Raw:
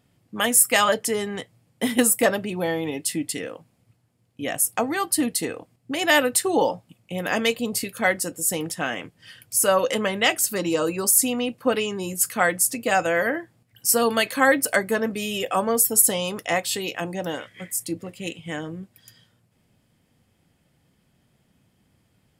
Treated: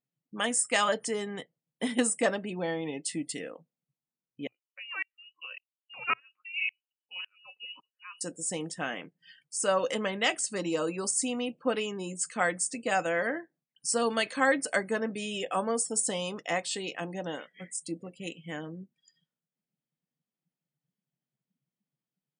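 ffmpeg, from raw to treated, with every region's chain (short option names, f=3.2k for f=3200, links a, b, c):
-filter_complex "[0:a]asettb=1/sr,asplit=3[a][b][c];[a]atrim=end=4.474[d];[b]atrim=start=4.47:end=8.21,asetpts=PTS-STARTPTS,afade=t=in:d=0.004:c=qsin,afade=t=out:st=3.736:d=0.004:c=qsin,lowpass=f=2.6k:t=q:w=0.5098,lowpass=f=2.6k:t=q:w=0.6013,lowpass=f=2.6k:t=q:w=0.9,lowpass=f=2.6k:t=q:w=2.563,afreqshift=-3100,aeval=exprs='val(0)*pow(10,-37*if(lt(mod(-1.8*n/s,1),2*abs(-1.8)/1000),1-mod(-1.8*n/s,1)/(2*abs(-1.8)/1000),(mod(-1.8*n/s,1)-2*abs(-1.8)/1000)/(1-2*abs(-1.8)/1000))/20)':c=same[e];[c]atrim=start=8.206[f];[d][e]acrossfade=d=0.004:c1=hsin:c2=qsin[g];[g][f]acrossfade=d=0.004:c1=qsin:c2=hsin,afftfilt=real='re*between(b*sr/4096,120,9500)':imag='im*between(b*sr/4096,120,9500)':win_size=4096:overlap=0.75,afftdn=nr=22:nf=-45,volume=-7dB"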